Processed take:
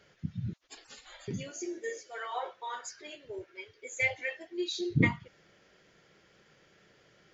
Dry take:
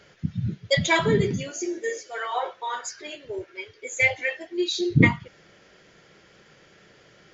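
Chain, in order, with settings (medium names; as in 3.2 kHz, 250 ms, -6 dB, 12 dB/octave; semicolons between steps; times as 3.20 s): 0.53–1.28 s: spectral gate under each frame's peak -30 dB weak; trim -8.5 dB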